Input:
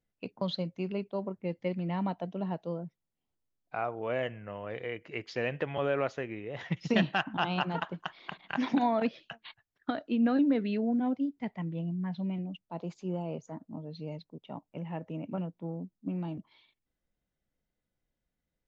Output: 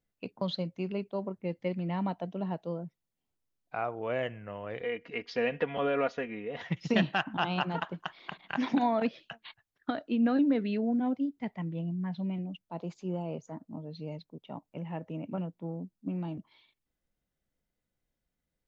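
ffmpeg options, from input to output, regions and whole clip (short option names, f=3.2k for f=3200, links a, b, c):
-filter_complex "[0:a]asettb=1/sr,asplit=3[a][b][c];[a]atrim=end=4.814[d];[b]atrim=start=4.81:end=6.62,asetpts=PTS-STARTPTS,afade=t=in:d=0.004:c=qsin,afade=t=out:st=1.806:d=0.004:c=qsin,lowpass=f=5.8k:w=0.5412,lowpass=f=5.8k:w=1.3066,aecho=1:1:4.2:0.72,atrim=end_sample=79821[e];[c]atrim=start=6.616[f];[d][e]acrossfade=d=0.004:c1=hsin:c2=qsin[g];[g][f]acrossfade=d=0.004:c1=qsin:c2=hsin"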